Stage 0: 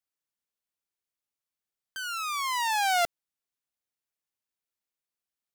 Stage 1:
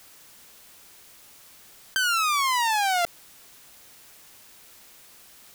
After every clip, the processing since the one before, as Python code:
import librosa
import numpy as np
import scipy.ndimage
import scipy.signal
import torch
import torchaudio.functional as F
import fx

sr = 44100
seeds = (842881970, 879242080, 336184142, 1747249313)

y = fx.env_flatten(x, sr, amount_pct=100)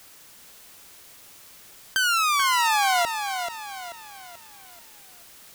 y = fx.echo_feedback(x, sr, ms=435, feedback_pct=41, wet_db=-7.5)
y = fx.end_taper(y, sr, db_per_s=230.0)
y = y * 10.0 ** (1.5 / 20.0)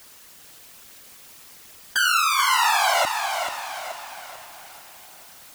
y = fx.whisperise(x, sr, seeds[0])
y = fx.echo_diffused(y, sr, ms=456, feedback_pct=46, wet_db=-13)
y = y * 10.0 ** (1.5 / 20.0)